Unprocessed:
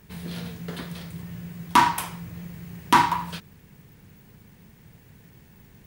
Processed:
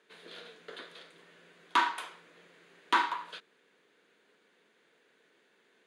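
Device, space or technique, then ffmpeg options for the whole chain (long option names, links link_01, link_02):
phone speaker on a table: -af "highpass=frequency=350:width=0.5412,highpass=frequency=350:width=1.3066,equalizer=frequency=480:width_type=q:width=4:gain=3,equalizer=frequency=850:width_type=q:width=4:gain=-6,equalizer=frequency=1500:width_type=q:width=4:gain=5,equalizer=frequency=3600:width_type=q:width=4:gain=5,equalizer=frequency=5500:width_type=q:width=4:gain=-10,equalizer=frequency=8000:width_type=q:width=4:gain=-8,lowpass=frequency=8400:width=0.5412,lowpass=frequency=8400:width=1.3066,volume=-8dB"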